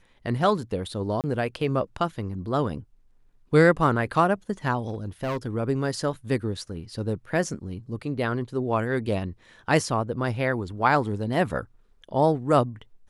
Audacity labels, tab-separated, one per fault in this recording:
1.210000	1.240000	gap 28 ms
4.880000	5.470000	clipped -24.5 dBFS

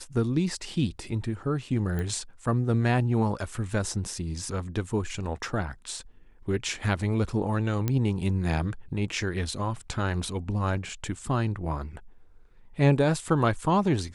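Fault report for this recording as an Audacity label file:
1.990000	1.990000	pop -20 dBFS
7.880000	7.880000	pop -13 dBFS

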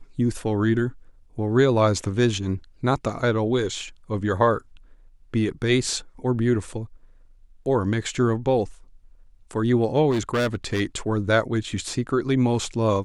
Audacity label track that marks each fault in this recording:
10.100000	10.810000	clipped -19 dBFS

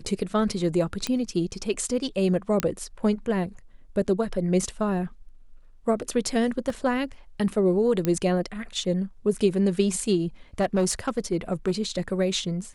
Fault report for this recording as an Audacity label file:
1.070000	1.070000	pop -12 dBFS
2.600000	2.600000	pop -8 dBFS
6.700000	6.700000	gap 2.3 ms
8.050000	8.050000	pop -12 dBFS
10.600000	11.710000	clipped -17.5 dBFS

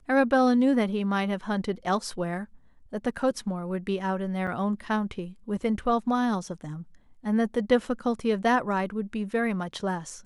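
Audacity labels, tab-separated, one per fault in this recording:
4.470000	4.480000	gap 6 ms

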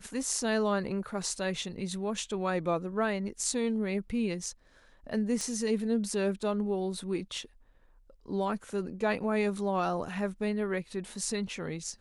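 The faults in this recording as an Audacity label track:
5.410000	5.410000	pop -21 dBFS

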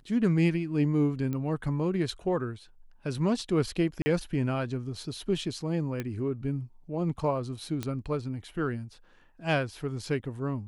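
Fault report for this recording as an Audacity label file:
1.330000	1.330000	pop -22 dBFS
4.020000	4.060000	gap 40 ms
6.000000	6.000000	pop -19 dBFS
7.830000	7.830000	pop -18 dBFS

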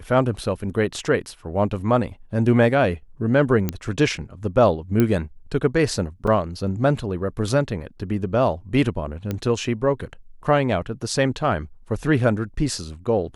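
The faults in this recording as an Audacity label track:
3.690000	3.690000	pop -9 dBFS
5.000000	5.000000	pop -7 dBFS
6.270000	6.270000	gap 4.5 ms
9.310000	9.310000	pop -13 dBFS

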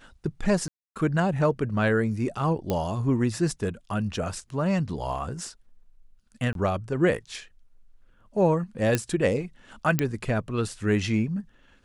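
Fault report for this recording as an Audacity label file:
0.680000	0.960000	gap 0.277 s
2.700000	2.700000	pop -13 dBFS
6.530000	6.550000	gap 22 ms
8.950000	8.950000	pop -9 dBFS
9.990000	9.990000	pop -8 dBFS

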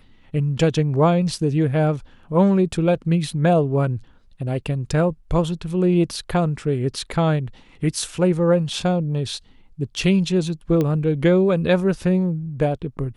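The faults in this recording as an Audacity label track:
10.810000	10.810000	pop -11 dBFS

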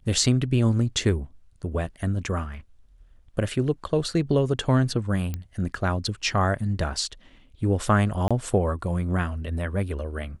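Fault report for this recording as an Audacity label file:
5.340000	5.340000	pop -17 dBFS
8.280000	8.310000	gap 26 ms

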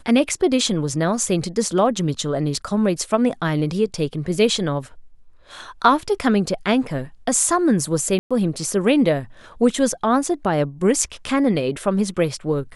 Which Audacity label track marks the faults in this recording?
8.190000	8.310000	gap 0.116 s

